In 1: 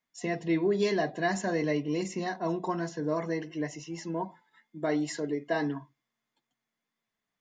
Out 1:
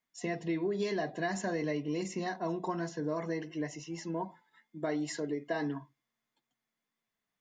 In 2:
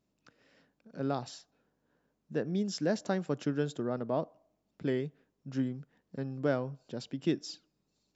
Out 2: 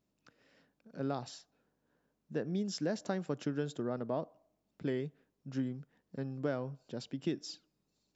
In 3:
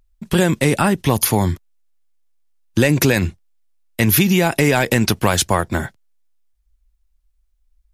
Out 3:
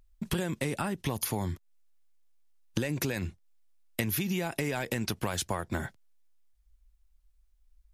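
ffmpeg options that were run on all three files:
-af "acompressor=threshold=-27dB:ratio=6,volume=-2dB"

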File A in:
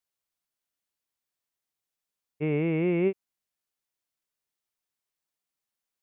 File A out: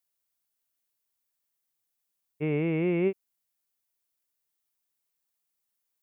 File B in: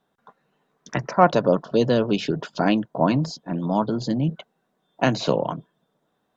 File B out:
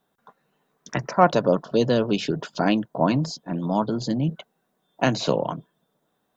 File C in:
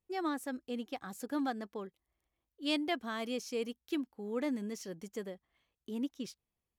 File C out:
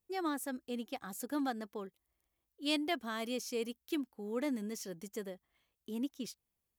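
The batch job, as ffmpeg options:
-af "highshelf=f=8.9k:g=11,volume=-1dB"

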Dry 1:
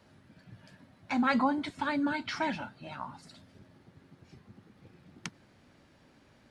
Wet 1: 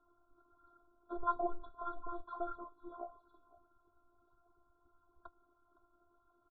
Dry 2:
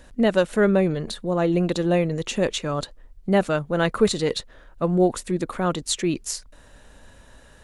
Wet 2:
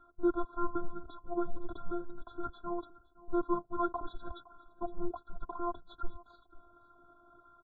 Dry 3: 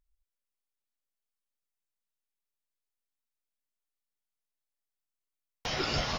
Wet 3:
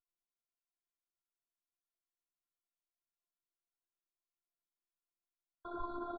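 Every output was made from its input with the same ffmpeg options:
-filter_complex "[0:a]asubboost=boost=5.5:cutoff=82,flanger=delay=0.5:depth=2.9:regen=24:speed=1.6:shape=sinusoidal,asoftclip=type=tanh:threshold=-18dB,afftfilt=real='hypot(re,im)*cos(PI*b)':imag='0':win_size=512:overlap=0.75,asplit=2[a][b];[b]aecho=0:1:513:0.0944[c];[a][c]amix=inputs=2:normalize=0,highpass=f=330:t=q:w=0.5412,highpass=f=330:t=q:w=1.307,lowpass=f=2.6k:t=q:w=0.5176,lowpass=f=2.6k:t=q:w=0.7071,lowpass=f=2.6k:t=q:w=1.932,afreqshift=-340,afftfilt=real='re*eq(mod(floor(b*sr/1024/1600),2),0)':imag='im*eq(mod(floor(b*sr/1024/1600),2),0)':win_size=1024:overlap=0.75,volume=2dB"

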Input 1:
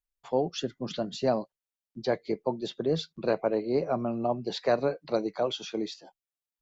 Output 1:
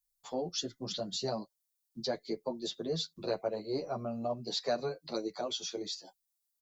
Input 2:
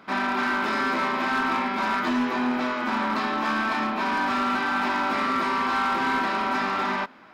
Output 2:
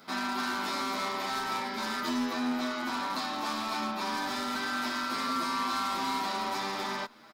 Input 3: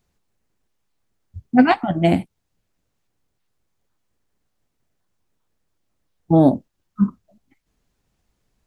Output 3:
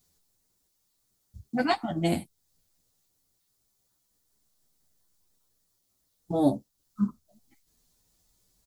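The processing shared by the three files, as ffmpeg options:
-filter_complex "[0:a]bandreject=f=1.6k:w=29,aexciter=amount=4.6:drive=3.5:freq=3.7k,asplit=2[a][b];[b]acompressor=threshold=-34dB:ratio=6,volume=0dB[c];[a][c]amix=inputs=2:normalize=0,asplit=2[d][e];[e]adelay=9.1,afreqshift=0.38[f];[d][f]amix=inputs=2:normalize=1,volume=-7dB"

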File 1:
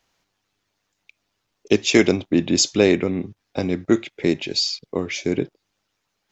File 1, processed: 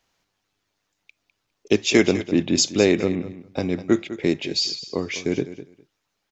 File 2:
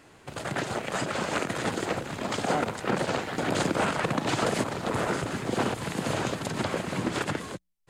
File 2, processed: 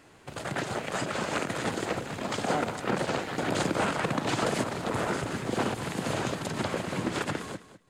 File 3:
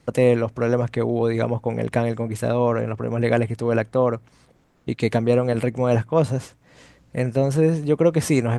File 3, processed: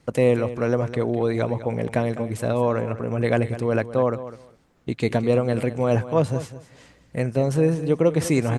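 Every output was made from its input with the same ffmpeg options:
-af "aecho=1:1:203|406:0.2|0.0339,volume=-1.5dB"

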